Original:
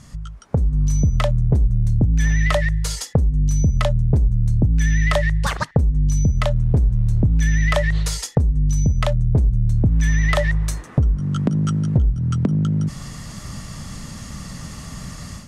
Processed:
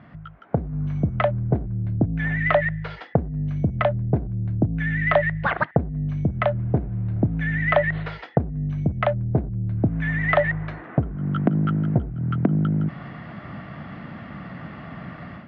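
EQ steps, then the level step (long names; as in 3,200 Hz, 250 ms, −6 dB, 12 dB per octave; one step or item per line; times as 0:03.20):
high-frequency loss of the air 270 metres
loudspeaker in its box 140–3,200 Hz, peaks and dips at 320 Hz +5 dB, 700 Hz +9 dB, 1,500 Hz +7 dB
parametric band 2,100 Hz +4 dB 0.32 octaves
0.0 dB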